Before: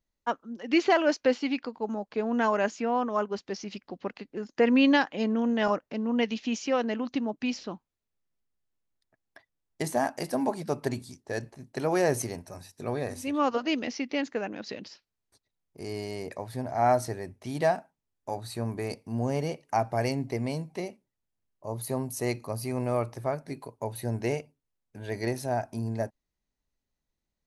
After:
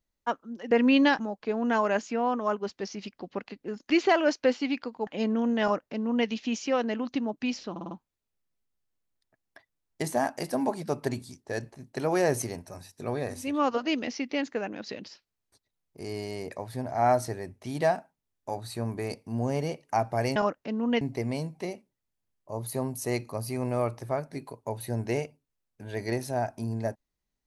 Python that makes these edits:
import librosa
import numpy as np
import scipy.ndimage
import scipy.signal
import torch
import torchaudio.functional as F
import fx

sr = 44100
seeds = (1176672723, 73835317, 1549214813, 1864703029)

y = fx.edit(x, sr, fx.swap(start_s=0.71, length_s=1.17, other_s=4.59, other_length_s=0.48),
    fx.duplicate(start_s=5.62, length_s=0.65, to_s=20.16),
    fx.stutter(start_s=7.71, slice_s=0.05, count=5), tone=tone)